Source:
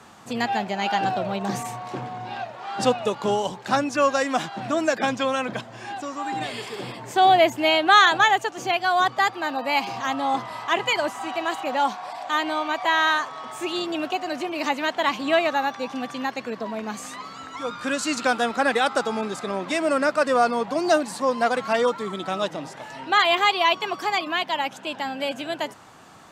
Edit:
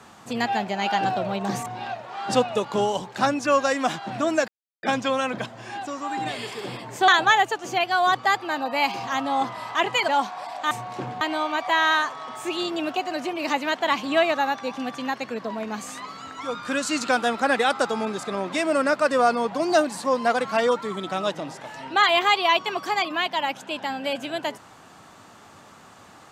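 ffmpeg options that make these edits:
ffmpeg -i in.wav -filter_complex "[0:a]asplit=7[link_01][link_02][link_03][link_04][link_05][link_06][link_07];[link_01]atrim=end=1.662[link_08];[link_02]atrim=start=2.158:end=4.98,asetpts=PTS-STARTPTS,afade=type=out:start_time=2.818:duration=0.004:curve=hsin,apad=pad_dur=0.35[link_09];[link_03]atrim=start=4.98:end=7.232,asetpts=PTS-STARTPTS,afade=type=in:duration=0.004:curve=hsin[link_10];[link_04]atrim=start=8.008:end=11.012[link_11];[link_05]atrim=start=11.738:end=12.372[link_12];[link_06]atrim=start=1.658:end=2.162[link_13];[link_07]atrim=start=12.368[link_14];[link_09][link_10]concat=n=2:v=0:a=1[link_15];[link_08][link_15]acrossfade=duration=0.004:curve1=hsin:curve2=hsin[link_16];[link_16][link_11]acrossfade=duration=0.004:curve1=hsin:curve2=hsin[link_17];[link_17][link_12]acrossfade=duration=0.004:curve1=hsin:curve2=hsin[link_18];[link_18][link_13]acrossfade=duration=0.004:curve1=hsin:curve2=hsin[link_19];[link_19][link_14]acrossfade=duration=0.004:curve1=hsin:curve2=hsin" out.wav

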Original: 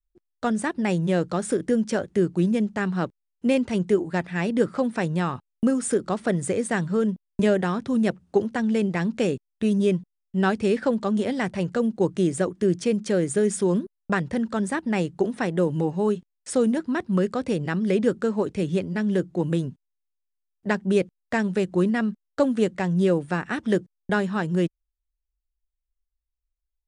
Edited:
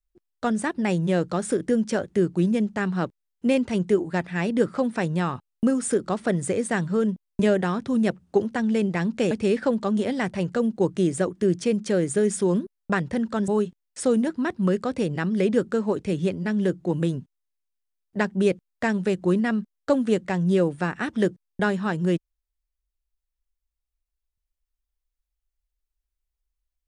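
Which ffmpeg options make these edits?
ffmpeg -i in.wav -filter_complex "[0:a]asplit=3[link_01][link_02][link_03];[link_01]atrim=end=9.312[link_04];[link_02]atrim=start=10.508:end=14.682[link_05];[link_03]atrim=start=15.978[link_06];[link_04][link_05]acrossfade=duration=0.004:curve1=hsin:curve2=hsin[link_07];[link_07][link_06]acrossfade=duration=0.004:curve1=hsin:curve2=hsin" out.wav

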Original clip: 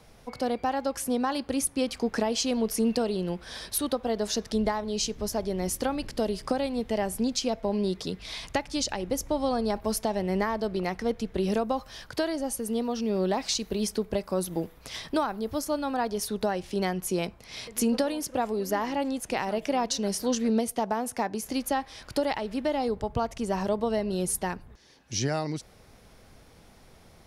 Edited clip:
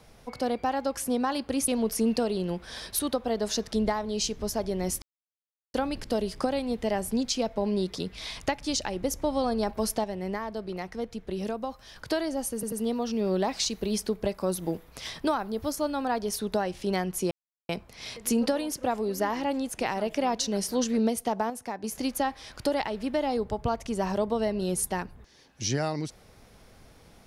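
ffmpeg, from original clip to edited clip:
ffmpeg -i in.wav -filter_complex "[0:a]asplit=10[link_01][link_02][link_03][link_04][link_05][link_06][link_07][link_08][link_09][link_10];[link_01]atrim=end=1.682[link_11];[link_02]atrim=start=2.468:end=5.81,asetpts=PTS-STARTPTS,afade=type=out:start_time=3.338:duration=0.004:curve=hsin,apad=pad_dur=0.72[link_12];[link_03]atrim=start=5.81:end=10.112,asetpts=PTS-STARTPTS,afade=type=in:duration=0.004:curve=hsin[link_13];[link_04]atrim=start=10.108:end=12.032,asetpts=PTS-STARTPTS,volume=-5.5dB[link_14];[link_05]atrim=start=12.028:end=12.702[link_15];[link_06]atrim=start=12.608:end=12.702[link_16];[link_07]atrim=start=12.608:end=17.2,asetpts=PTS-STARTPTS,afade=type=out:start_time=4.588:duration=0.004:curve=hsin,apad=pad_dur=0.38[link_17];[link_08]atrim=start=17.2:end=21.012,asetpts=PTS-STARTPTS,afade=type=in:duration=0.004:curve=hsin[link_18];[link_09]atrim=start=21.008:end=21.352,asetpts=PTS-STARTPTS,volume=-6dB[link_19];[link_10]atrim=start=21.348[link_20];[link_12][link_13]concat=n=2:v=0:a=1[link_21];[link_11][link_21]acrossfade=duration=0.004:curve1=hsin:curve2=hsin[link_22];[link_22][link_14]acrossfade=duration=0.004:curve1=hsin:curve2=hsin[link_23];[link_23][link_15]acrossfade=duration=0.004:curve1=hsin:curve2=hsin[link_24];[link_24][link_16]acrossfade=duration=0.004:curve1=hsin:curve2=hsin[link_25];[link_17][link_18]concat=n=2:v=0:a=1[link_26];[link_25][link_26]acrossfade=duration=0.004:curve1=hsin:curve2=hsin[link_27];[link_27][link_19]acrossfade=duration=0.004:curve1=hsin:curve2=hsin[link_28];[link_28][link_20]acrossfade=duration=0.004:curve1=hsin:curve2=hsin" out.wav

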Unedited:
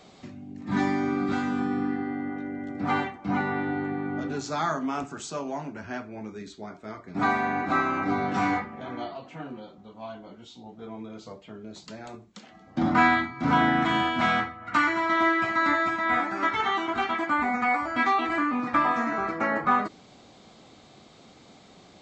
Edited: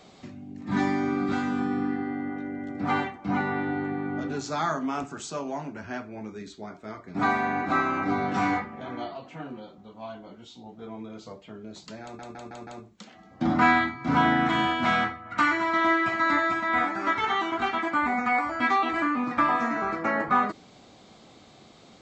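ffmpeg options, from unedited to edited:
ffmpeg -i in.wav -filter_complex "[0:a]asplit=5[link_01][link_02][link_03][link_04][link_05];[link_01]atrim=end=12.192[link_06];[link_02]atrim=start=12.028:end=12.192[link_07];[link_03]atrim=start=12.028:end=12.192[link_08];[link_04]atrim=start=12.028:end=12.192[link_09];[link_05]atrim=start=12.028[link_10];[link_06][link_07]acrossfade=duration=0.004:curve1=hsin:curve2=hsin[link_11];[link_11][link_08]acrossfade=duration=0.004:curve1=hsin:curve2=hsin[link_12];[link_12][link_09]acrossfade=duration=0.004:curve1=hsin:curve2=hsin[link_13];[link_13][link_10]acrossfade=duration=0.004:curve1=hsin:curve2=hsin" out.wav

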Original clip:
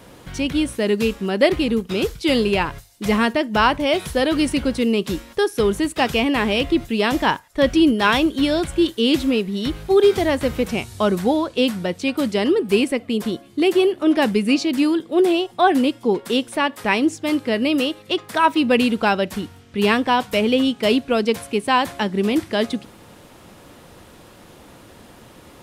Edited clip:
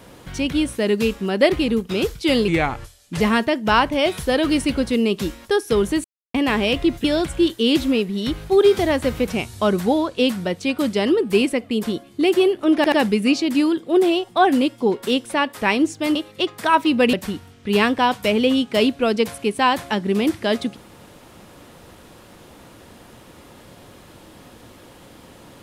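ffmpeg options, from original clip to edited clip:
ffmpeg -i in.wav -filter_complex "[0:a]asplit=10[link_01][link_02][link_03][link_04][link_05][link_06][link_07][link_08][link_09][link_10];[link_01]atrim=end=2.484[link_11];[link_02]atrim=start=2.48:end=3.08,asetpts=PTS-STARTPTS,asetrate=36603,aresample=44100[link_12];[link_03]atrim=start=3.076:end=5.92,asetpts=PTS-STARTPTS,afade=type=out:start_time=2.84:duration=0.004:curve=hsin[link_13];[link_04]atrim=start=5.92:end=6.22,asetpts=PTS-STARTPTS,volume=0[link_14];[link_05]atrim=start=6.22:end=6.922,asetpts=PTS-STARTPTS,afade=type=in:duration=0.004:curve=hsin[link_15];[link_06]atrim=start=8.428:end=14.232[link_16];[link_07]atrim=start=14.148:end=14.232[link_17];[link_08]atrim=start=14.148:end=17.382[link_18];[link_09]atrim=start=17.858:end=18.842[link_19];[link_10]atrim=start=19.218[link_20];[link_11][link_12]acrossfade=duration=0.004:curve1=hsin:curve2=hsin[link_21];[link_13][link_14][link_15]concat=n=3:v=0:a=1[link_22];[link_21][link_22]acrossfade=duration=0.004:curve1=hsin:curve2=hsin[link_23];[link_23][link_16]acrossfade=duration=0.004:curve1=hsin:curve2=hsin[link_24];[link_24][link_17]acrossfade=duration=0.004:curve1=hsin:curve2=hsin[link_25];[link_25][link_18]acrossfade=duration=0.004:curve1=hsin:curve2=hsin[link_26];[link_26][link_19]acrossfade=duration=0.004:curve1=hsin:curve2=hsin[link_27];[link_27][link_20]acrossfade=duration=0.004:curve1=hsin:curve2=hsin" out.wav

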